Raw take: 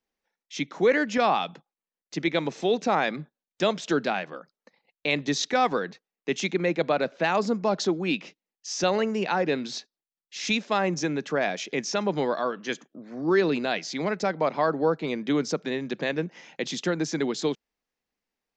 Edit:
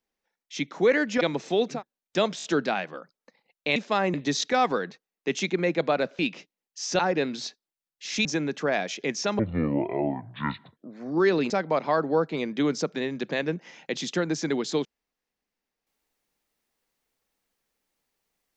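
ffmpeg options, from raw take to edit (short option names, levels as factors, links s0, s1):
-filter_complex "[0:a]asplit=14[s0][s1][s2][s3][s4][s5][s6][s7][s8][s9][s10][s11][s12][s13];[s0]atrim=end=1.212[s14];[s1]atrim=start=2.328:end=2.95[s15];[s2]atrim=start=3.12:end=3.852[s16];[s3]atrim=start=3.828:end=3.852[s17];[s4]atrim=start=3.828:end=3.852[s18];[s5]atrim=start=3.828:end=5.152[s19];[s6]atrim=start=10.558:end=10.942[s20];[s7]atrim=start=5.148:end=7.202[s21];[s8]atrim=start=8.068:end=8.872[s22];[s9]atrim=start=9.298:end=10.562[s23];[s10]atrim=start=10.938:end=12.084[s24];[s11]atrim=start=12.08:end=12.88,asetpts=PTS-STARTPTS,asetrate=25578,aresample=44100[s25];[s12]atrim=start=12.876:end=13.612[s26];[s13]atrim=start=14.198[s27];[s14][s15]acrossfade=d=0.004:c1=hsin:c2=hsin[s28];[s28][s16]acrossfade=d=0.16:c1=tri:c2=tri[s29];[s29][s17]acrossfade=d=0.004:c1=hsin:c2=hsin[s30];[s30][s18]acrossfade=d=0.004:c1=hsin:c2=hsin[s31];[s31][s19]acrossfade=d=0.004:c1=hsin:c2=hsin[s32];[s32][s20]acrossfade=d=0.004:c1=hsin:c2=hsin[s33];[s33][s21]acrossfade=d=0.004:c1=hsin:c2=hsin[s34];[s34][s22]acrossfade=d=0.004:c1=hsin:c2=hsin[s35];[s35][s23]acrossfade=d=0.004:c1=hsin:c2=hsin[s36];[s36][s24]acrossfade=d=0.004:c1=hsin:c2=hsin[s37];[s37][s25]acrossfade=d=0.004:c1=hsin:c2=hsin[s38];[s38][s26]acrossfade=d=0.004:c1=hsin:c2=hsin[s39];[s39][s27]acrossfade=d=0.004:c1=hsin:c2=hsin"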